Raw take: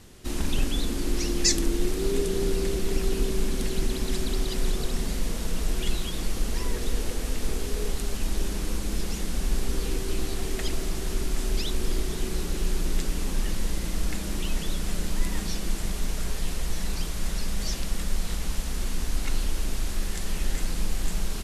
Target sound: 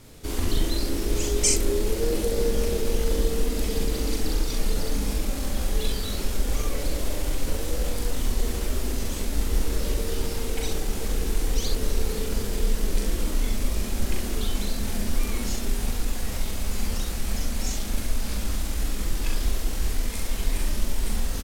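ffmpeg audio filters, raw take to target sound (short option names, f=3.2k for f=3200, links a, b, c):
-af "asetrate=52444,aresample=44100,atempo=0.840896,aecho=1:1:39|64:0.631|0.562"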